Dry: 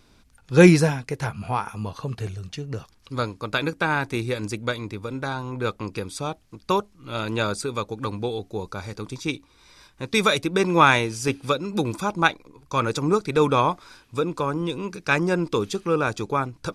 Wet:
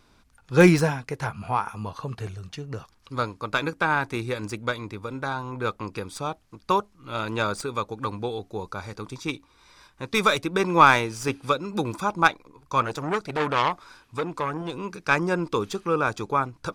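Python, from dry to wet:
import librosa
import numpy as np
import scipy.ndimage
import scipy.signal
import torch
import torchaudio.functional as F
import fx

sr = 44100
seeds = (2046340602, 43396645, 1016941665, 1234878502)

y = fx.tracing_dist(x, sr, depth_ms=0.036)
y = fx.peak_eq(y, sr, hz=1100.0, db=5.5, octaves=1.4)
y = fx.transformer_sat(y, sr, knee_hz=1700.0, at=(12.82, 14.74))
y = y * 10.0 ** (-3.5 / 20.0)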